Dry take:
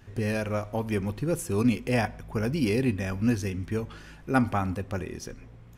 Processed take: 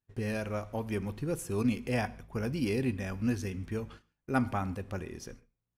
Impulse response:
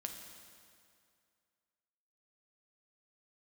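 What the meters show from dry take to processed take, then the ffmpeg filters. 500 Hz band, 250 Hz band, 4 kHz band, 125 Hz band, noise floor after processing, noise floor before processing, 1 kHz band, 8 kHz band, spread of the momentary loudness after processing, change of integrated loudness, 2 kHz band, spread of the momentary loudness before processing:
-5.5 dB, -5.5 dB, -5.5 dB, -5.5 dB, under -85 dBFS, -49 dBFS, -5.5 dB, -5.5 dB, 9 LU, -5.5 dB, -5.5 dB, 12 LU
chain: -filter_complex "[0:a]agate=range=0.0251:threshold=0.00891:ratio=16:detection=peak,asplit=2[s0][s1];[1:a]atrim=start_sample=2205,afade=t=out:st=0.15:d=0.01,atrim=end_sample=7056,asetrate=29106,aresample=44100[s2];[s1][s2]afir=irnorm=-1:irlink=0,volume=0.224[s3];[s0][s3]amix=inputs=2:normalize=0,volume=0.447"

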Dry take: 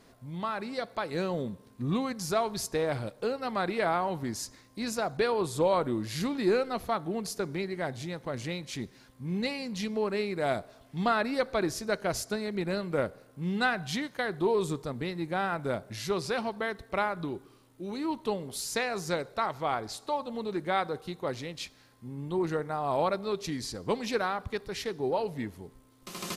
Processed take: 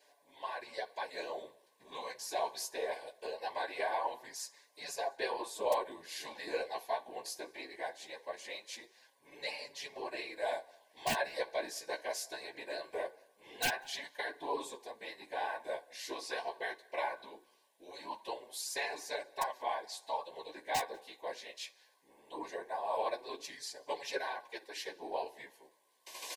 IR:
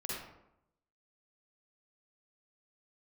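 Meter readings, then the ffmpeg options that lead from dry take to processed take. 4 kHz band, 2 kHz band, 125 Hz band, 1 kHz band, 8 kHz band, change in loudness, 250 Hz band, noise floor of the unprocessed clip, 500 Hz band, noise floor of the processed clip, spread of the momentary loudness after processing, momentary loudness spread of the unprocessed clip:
-4.0 dB, -6.0 dB, -26.5 dB, -6.0 dB, -4.0 dB, -8.0 dB, -20.0 dB, -59 dBFS, -9.0 dB, -70 dBFS, 11 LU, 10 LU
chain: -filter_complex "[0:a]highpass=f=540:w=0.5412,highpass=f=540:w=1.3066,asplit=2[s0][s1];[s1]adelay=13,volume=0.224[s2];[s0][s2]amix=inputs=2:normalize=0,asplit=2[s3][s4];[1:a]atrim=start_sample=2205,atrim=end_sample=3087[s5];[s4][s5]afir=irnorm=-1:irlink=0,volume=0.15[s6];[s3][s6]amix=inputs=2:normalize=0,aeval=exprs='(mod(6.31*val(0)+1,2)-1)/6.31':c=same,afftfilt=real='hypot(re,im)*cos(2*PI*random(0))':imag='hypot(re,im)*sin(2*PI*random(1))':win_size=512:overlap=0.75,asuperstop=centerf=1300:order=20:qfactor=3.9,asplit=2[s7][s8];[s8]adelay=192.4,volume=0.0398,highshelf=f=4000:g=-4.33[s9];[s7][s9]amix=inputs=2:normalize=0,flanger=delay=6.8:depth=9.3:regen=-15:speed=0.21:shape=sinusoidal,volume=1.5"

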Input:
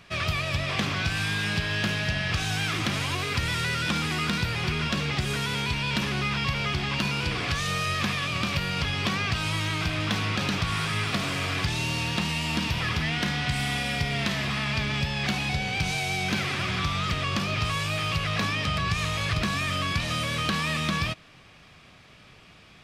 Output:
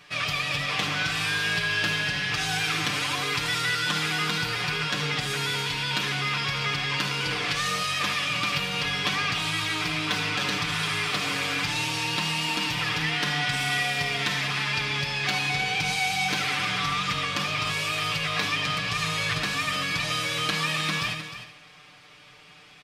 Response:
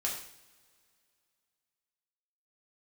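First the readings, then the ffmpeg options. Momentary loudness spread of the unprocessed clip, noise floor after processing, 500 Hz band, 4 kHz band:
1 LU, -51 dBFS, -1.0 dB, +3.0 dB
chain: -filter_complex "[0:a]lowshelf=f=260:g=-12,bandreject=f=640:w=12,aecho=1:1:6.7:0.82,aecho=1:1:308:0.266,asplit=2[s0][s1];[1:a]atrim=start_sample=2205,adelay=75[s2];[s1][s2]afir=irnorm=-1:irlink=0,volume=0.237[s3];[s0][s3]amix=inputs=2:normalize=0"

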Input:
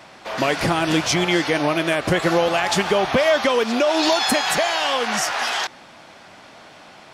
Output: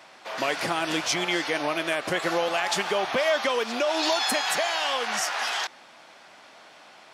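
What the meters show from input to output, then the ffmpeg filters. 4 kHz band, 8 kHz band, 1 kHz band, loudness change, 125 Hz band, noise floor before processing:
-4.5 dB, -4.5 dB, -5.5 dB, -6.0 dB, -15.0 dB, -45 dBFS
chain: -af "highpass=f=500:p=1,volume=0.596"

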